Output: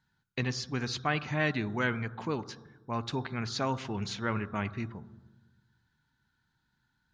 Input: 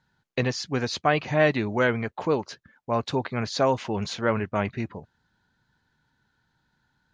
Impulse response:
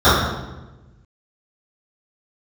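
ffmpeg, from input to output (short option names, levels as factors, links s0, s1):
-filter_complex "[0:a]equalizer=f=560:w=1.4:g=-9.5,asplit=2[s0][s1];[1:a]atrim=start_sample=2205,adelay=38[s2];[s1][s2]afir=irnorm=-1:irlink=0,volume=0.00596[s3];[s0][s3]amix=inputs=2:normalize=0,volume=0.596"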